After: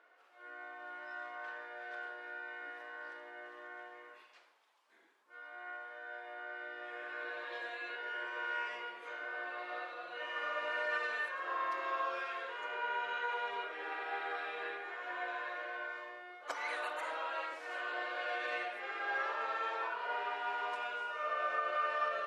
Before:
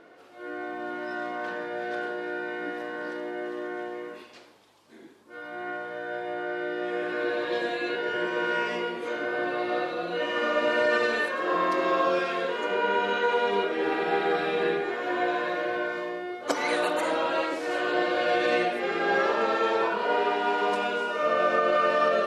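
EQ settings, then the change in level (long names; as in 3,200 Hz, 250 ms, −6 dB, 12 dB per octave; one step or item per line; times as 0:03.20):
high-pass filter 1,100 Hz 12 dB per octave
high-shelf EQ 3,100 Hz −12 dB
parametric band 4,200 Hz −2.5 dB
−5.0 dB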